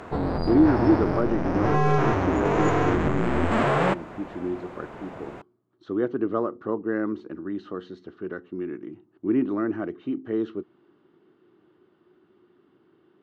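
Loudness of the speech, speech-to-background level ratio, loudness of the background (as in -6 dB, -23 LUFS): -28.0 LUFS, -3.5 dB, -24.5 LUFS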